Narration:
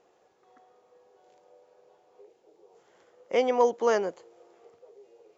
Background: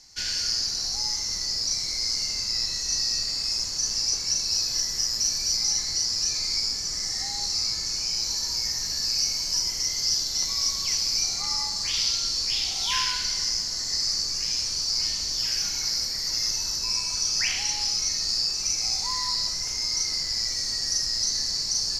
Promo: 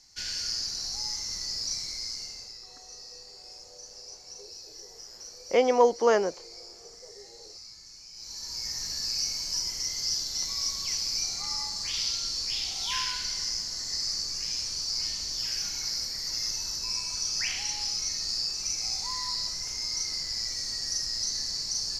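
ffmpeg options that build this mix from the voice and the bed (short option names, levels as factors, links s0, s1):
-filter_complex "[0:a]adelay=2200,volume=1.26[s0];[1:a]volume=2.99,afade=t=out:st=1.74:d=0.86:silence=0.188365,afade=t=in:st=8.13:d=0.68:silence=0.177828[s1];[s0][s1]amix=inputs=2:normalize=0"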